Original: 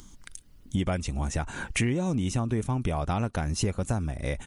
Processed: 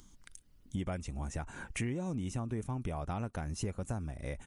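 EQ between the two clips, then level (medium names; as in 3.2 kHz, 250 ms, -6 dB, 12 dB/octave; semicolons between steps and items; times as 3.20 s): dynamic bell 3.9 kHz, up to -5 dB, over -52 dBFS, Q 1.2; -9.0 dB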